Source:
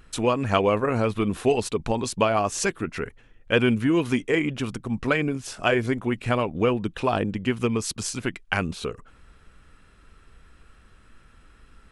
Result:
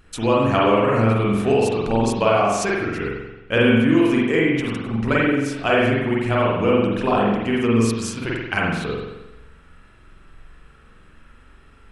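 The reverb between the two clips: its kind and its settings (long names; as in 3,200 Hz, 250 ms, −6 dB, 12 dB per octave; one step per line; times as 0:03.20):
spring reverb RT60 1 s, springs 44 ms, chirp 65 ms, DRR −5 dB
level −1 dB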